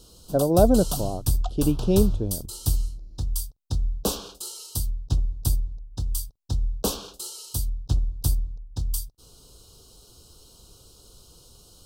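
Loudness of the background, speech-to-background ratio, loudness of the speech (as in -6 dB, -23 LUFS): -29.5 LUFS, 6.0 dB, -23.5 LUFS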